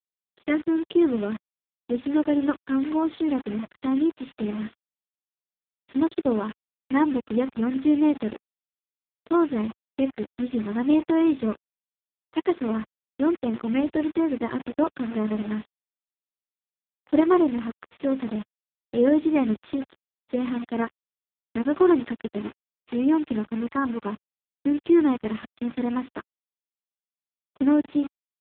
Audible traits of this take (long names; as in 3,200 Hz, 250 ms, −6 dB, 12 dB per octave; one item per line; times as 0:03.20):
a quantiser's noise floor 6 bits, dither none
AMR narrowband